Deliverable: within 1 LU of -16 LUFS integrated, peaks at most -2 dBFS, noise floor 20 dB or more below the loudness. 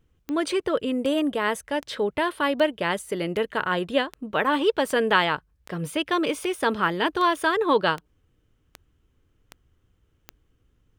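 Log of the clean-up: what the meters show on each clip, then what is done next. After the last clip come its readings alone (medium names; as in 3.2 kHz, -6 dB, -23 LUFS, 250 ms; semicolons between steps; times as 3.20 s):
clicks found 14; loudness -24.5 LUFS; peak level -5.5 dBFS; loudness target -16.0 LUFS
-> de-click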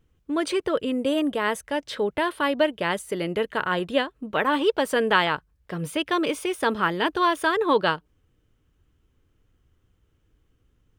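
clicks found 0; loudness -24.5 LUFS; peak level -5.5 dBFS; loudness target -16.0 LUFS
-> trim +8.5 dB; peak limiter -2 dBFS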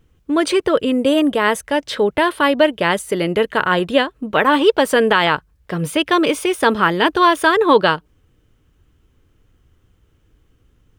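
loudness -16.5 LUFS; peak level -2.0 dBFS; noise floor -59 dBFS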